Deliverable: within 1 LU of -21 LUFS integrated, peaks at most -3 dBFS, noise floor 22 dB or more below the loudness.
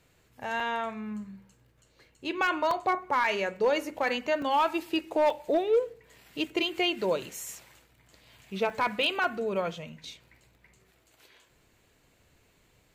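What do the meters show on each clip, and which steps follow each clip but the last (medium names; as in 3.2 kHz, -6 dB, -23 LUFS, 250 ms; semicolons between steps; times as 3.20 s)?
clipped samples 0.4%; clipping level -18.0 dBFS; dropouts 7; longest dropout 2.7 ms; loudness -29.0 LUFS; peak level -18.0 dBFS; loudness target -21.0 LUFS
-> clip repair -18 dBFS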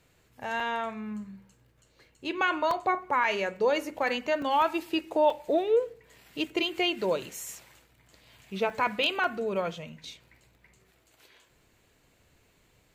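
clipped samples 0.0%; dropouts 7; longest dropout 2.7 ms
-> interpolate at 0.60/2.71/3.24/4.42/5.30/8.70/9.24 s, 2.7 ms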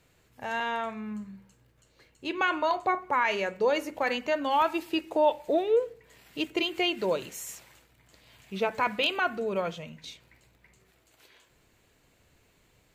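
dropouts 0; loudness -28.5 LUFS; peak level -11.5 dBFS; loudness target -21.0 LUFS
-> trim +7.5 dB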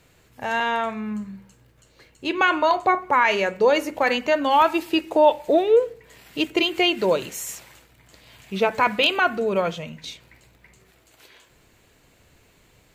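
loudness -21.0 LUFS; peak level -4.0 dBFS; noise floor -58 dBFS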